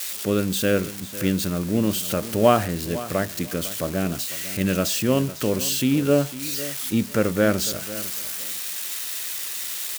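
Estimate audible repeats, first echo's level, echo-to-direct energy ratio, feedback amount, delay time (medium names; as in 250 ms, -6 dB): 2, -15.5 dB, -15.5 dB, 19%, 501 ms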